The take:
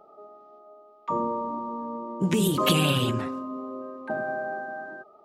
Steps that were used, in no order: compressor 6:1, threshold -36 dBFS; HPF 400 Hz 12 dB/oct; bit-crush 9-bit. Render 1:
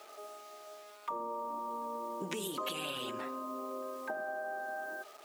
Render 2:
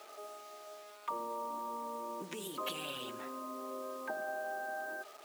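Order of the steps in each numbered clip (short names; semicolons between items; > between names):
bit-crush > HPF > compressor; compressor > bit-crush > HPF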